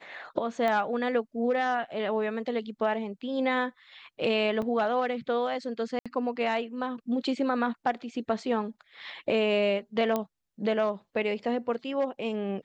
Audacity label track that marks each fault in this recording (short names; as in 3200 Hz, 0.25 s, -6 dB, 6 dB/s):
0.680000	0.680000	pop -18 dBFS
4.620000	4.620000	gap 3.4 ms
5.990000	6.060000	gap 66 ms
10.160000	10.160000	pop -15 dBFS